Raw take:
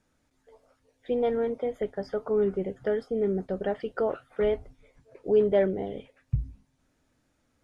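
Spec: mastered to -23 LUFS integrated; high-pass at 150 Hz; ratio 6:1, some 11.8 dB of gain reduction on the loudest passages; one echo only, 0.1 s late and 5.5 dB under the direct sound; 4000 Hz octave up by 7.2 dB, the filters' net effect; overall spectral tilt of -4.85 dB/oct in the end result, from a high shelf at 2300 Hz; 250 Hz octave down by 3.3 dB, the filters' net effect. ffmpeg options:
-af "highpass=150,equalizer=f=250:t=o:g=-3.5,highshelf=f=2.3k:g=3.5,equalizer=f=4k:t=o:g=7,acompressor=threshold=-31dB:ratio=6,aecho=1:1:100:0.531,volume=12.5dB"

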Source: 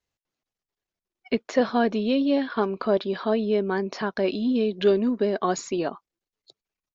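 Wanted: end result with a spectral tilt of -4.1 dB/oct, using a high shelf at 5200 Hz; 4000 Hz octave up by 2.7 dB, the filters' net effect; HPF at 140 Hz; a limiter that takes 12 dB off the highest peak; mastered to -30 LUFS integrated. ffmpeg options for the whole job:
-af "highpass=140,equalizer=f=4k:t=o:g=6.5,highshelf=f=5.2k:g=-7.5,alimiter=limit=-21dB:level=0:latency=1"

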